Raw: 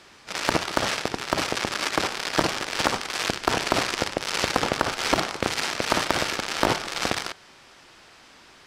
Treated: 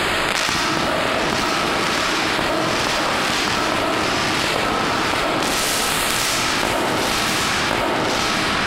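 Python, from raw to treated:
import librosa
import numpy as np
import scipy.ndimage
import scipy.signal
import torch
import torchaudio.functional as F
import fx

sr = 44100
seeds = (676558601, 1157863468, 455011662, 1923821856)

y = fx.spec_clip(x, sr, under_db=23, at=(5.39, 6.25), fade=0.02)
y = fx.filter_lfo_notch(y, sr, shape='square', hz=1.4, low_hz=550.0, high_hz=5700.0, q=1.3)
y = y + 10.0 ** (-8.5 / 20.0) * np.pad(y, (int(1079 * sr / 1000.0), 0))[:len(y)]
y = fx.rev_freeverb(y, sr, rt60_s=1.6, hf_ratio=0.8, predelay_ms=65, drr_db=-7.0)
y = fx.env_flatten(y, sr, amount_pct=100)
y = y * 10.0 ** (-5.0 / 20.0)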